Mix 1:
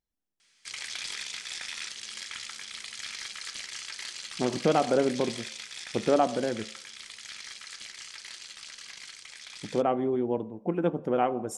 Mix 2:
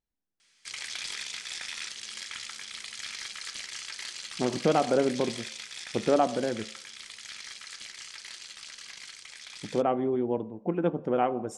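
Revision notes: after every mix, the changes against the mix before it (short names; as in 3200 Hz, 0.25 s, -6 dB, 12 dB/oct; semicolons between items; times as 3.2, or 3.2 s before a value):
speech: add air absorption 58 m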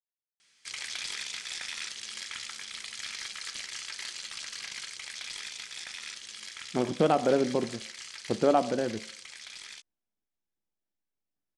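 speech: entry +2.35 s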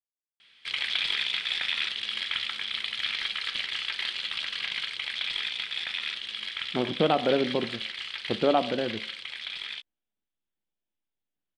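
background +5.5 dB; master: add resonant high shelf 4700 Hz -12 dB, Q 3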